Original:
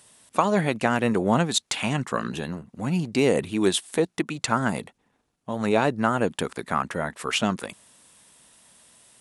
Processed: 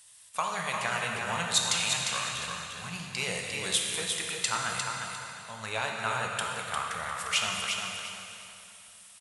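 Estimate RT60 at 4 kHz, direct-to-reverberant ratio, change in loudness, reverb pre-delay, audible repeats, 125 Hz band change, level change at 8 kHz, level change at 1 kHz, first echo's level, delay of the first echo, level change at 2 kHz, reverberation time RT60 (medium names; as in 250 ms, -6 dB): 2.7 s, -1.5 dB, -5.0 dB, 6 ms, 2, -13.0 dB, +3.0 dB, -5.5 dB, -5.5 dB, 352 ms, -1.0 dB, 2.9 s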